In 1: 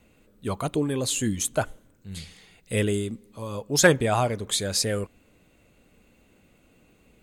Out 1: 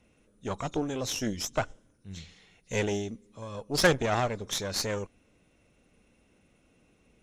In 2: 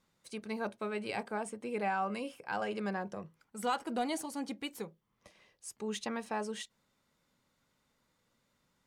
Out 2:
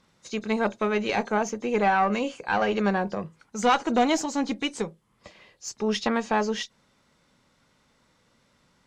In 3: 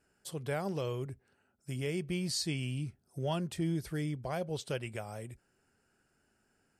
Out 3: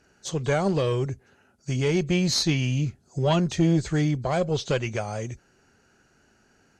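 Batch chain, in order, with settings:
nonlinear frequency compression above 3500 Hz 1.5:1; added harmonics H 8 -18 dB, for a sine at -4.5 dBFS; normalise peaks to -9 dBFS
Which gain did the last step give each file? -5.0, +11.5, +12.5 dB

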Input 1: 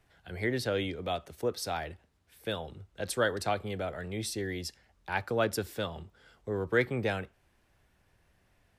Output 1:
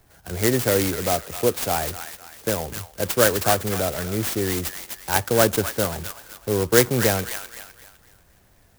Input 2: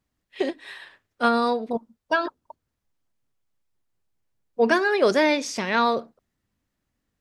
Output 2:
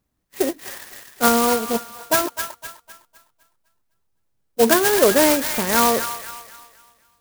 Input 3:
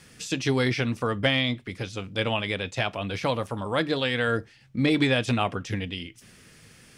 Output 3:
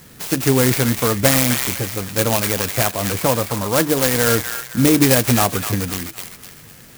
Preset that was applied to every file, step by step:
on a send: thin delay 0.254 s, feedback 38%, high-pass 1500 Hz, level -4 dB; on the sum: clock jitter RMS 0.1 ms; normalise peaks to -3 dBFS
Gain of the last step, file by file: +10.5, +4.0, +8.5 dB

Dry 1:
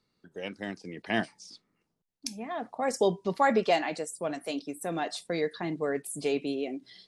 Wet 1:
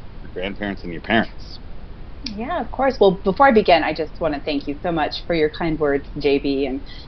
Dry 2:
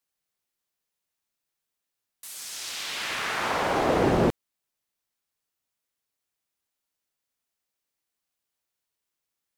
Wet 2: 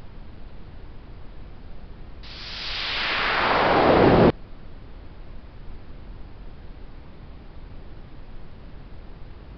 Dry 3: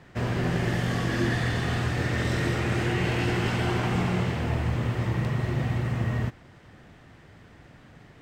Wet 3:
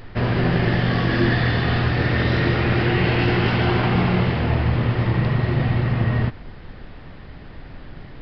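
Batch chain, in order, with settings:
added noise brown -44 dBFS; downsampling 11025 Hz; match loudness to -20 LUFS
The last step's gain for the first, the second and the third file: +11.0, +6.5, +7.0 dB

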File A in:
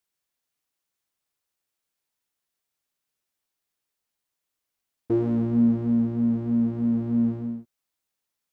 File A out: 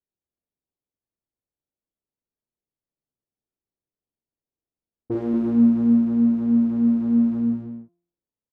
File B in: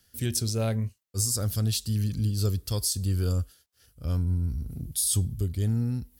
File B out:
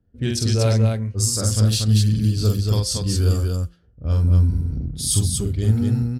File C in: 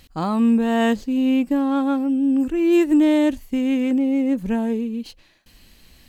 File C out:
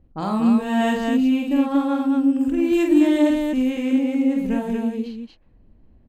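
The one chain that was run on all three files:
de-hum 173.2 Hz, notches 14; low-pass opened by the level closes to 450 Hz, open at -21 dBFS; loudspeakers at several distances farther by 16 m -3 dB, 81 m -3 dB; match loudness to -20 LUFS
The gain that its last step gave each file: -1.0, +5.5, -3.0 dB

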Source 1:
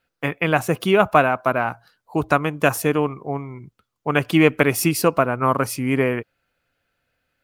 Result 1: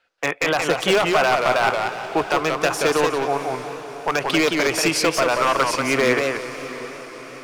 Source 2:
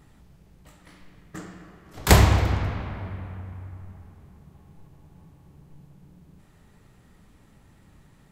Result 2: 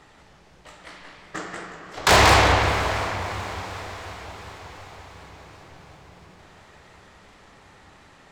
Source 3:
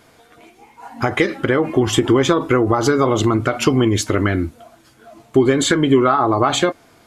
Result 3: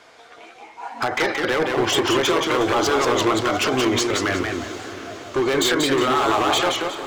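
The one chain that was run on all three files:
three-band isolator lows -16 dB, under 410 Hz, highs -21 dB, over 7400 Hz; limiter -14 dBFS; wavefolder -18.5 dBFS; diffused feedback echo 0.663 s, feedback 56%, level -14.5 dB; warbling echo 0.181 s, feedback 31%, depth 154 cents, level -4 dB; match loudness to -20 LUFS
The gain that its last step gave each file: +7.0, +11.0, +4.0 dB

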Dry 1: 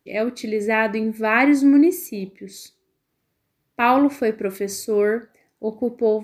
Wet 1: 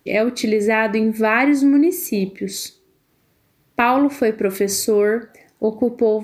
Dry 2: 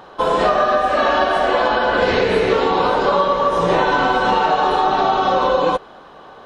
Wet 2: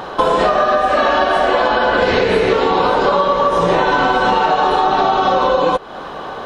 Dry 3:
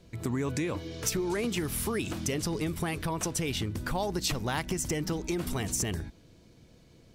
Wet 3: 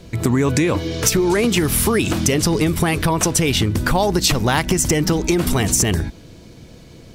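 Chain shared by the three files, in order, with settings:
compressor 3:1, threshold -28 dBFS; normalise peaks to -2 dBFS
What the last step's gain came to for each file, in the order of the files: +11.5, +13.0, +15.5 dB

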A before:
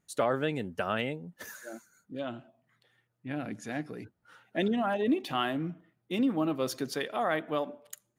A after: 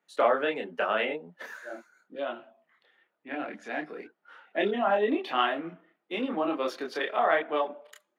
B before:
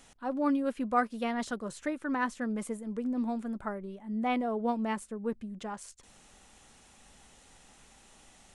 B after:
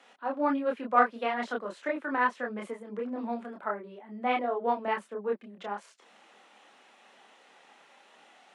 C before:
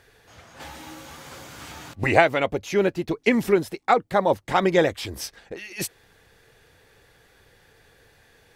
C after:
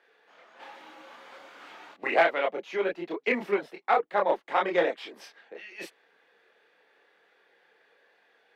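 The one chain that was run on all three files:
steep high-pass 170 Hz 36 dB/oct; added harmonics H 5 -14 dB, 7 -17 dB, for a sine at -0.5 dBFS; chorus voices 4, 1.2 Hz, delay 27 ms, depth 3 ms; overloaded stage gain 10.5 dB; three-band isolator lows -17 dB, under 350 Hz, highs -20 dB, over 3700 Hz; normalise peaks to -9 dBFS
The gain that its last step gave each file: +8.5, +8.0, -2.0 dB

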